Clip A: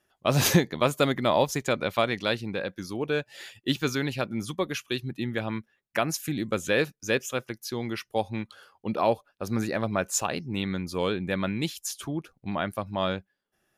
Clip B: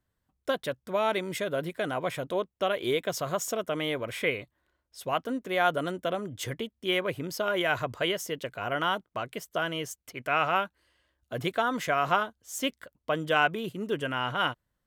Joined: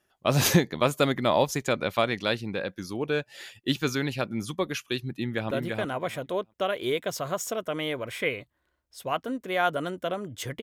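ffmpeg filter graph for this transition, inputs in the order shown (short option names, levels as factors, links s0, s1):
-filter_complex "[0:a]apad=whole_dur=10.62,atrim=end=10.62,atrim=end=5.512[s0];[1:a]atrim=start=1.518:end=6.63[s1];[s0][s1]acrossfade=d=0.004:c1=hsin:c2=hsin,asplit=2[s2][s3];[s3]afade=t=in:st=5.12:d=0.01,afade=t=out:st=5.51:d=0.01,aecho=0:1:340|680|1020:0.707946|0.106192|0.0159288[s4];[s2][s4]amix=inputs=2:normalize=0"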